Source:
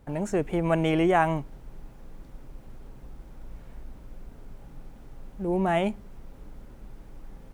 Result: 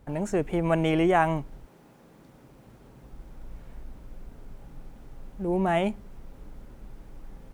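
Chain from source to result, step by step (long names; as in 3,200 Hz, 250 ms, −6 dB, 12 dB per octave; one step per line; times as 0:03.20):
0:01.65–0:03.11: high-pass filter 220 Hz → 59 Hz 12 dB per octave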